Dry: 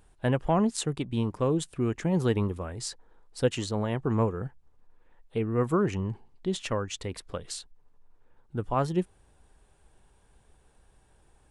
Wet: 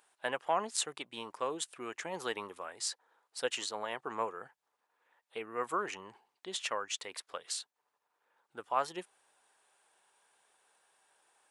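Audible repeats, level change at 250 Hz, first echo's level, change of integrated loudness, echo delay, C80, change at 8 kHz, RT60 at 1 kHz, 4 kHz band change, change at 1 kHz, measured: no echo, -19.5 dB, no echo, -8.0 dB, no echo, no reverb, 0.0 dB, no reverb, 0.0 dB, -2.0 dB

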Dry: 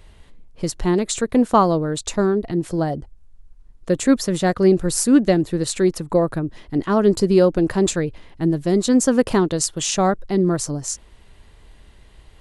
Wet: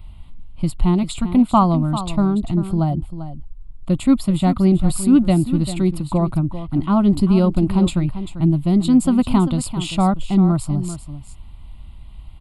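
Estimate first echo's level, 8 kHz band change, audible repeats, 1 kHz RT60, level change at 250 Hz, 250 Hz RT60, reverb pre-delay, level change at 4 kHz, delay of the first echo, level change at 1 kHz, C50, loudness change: -12.0 dB, -8.5 dB, 1, no reverb, +3.0 dB, no reverb, no reverb, -3.0 dB, 393 ms, +0.5 dB, no reverb, +1.0 dB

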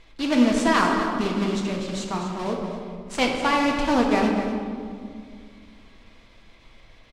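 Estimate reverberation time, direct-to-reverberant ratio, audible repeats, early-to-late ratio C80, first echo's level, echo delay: 2.2 s, 0.0 dB, 1, 3.5 dB, -10.0 dB, 245 ms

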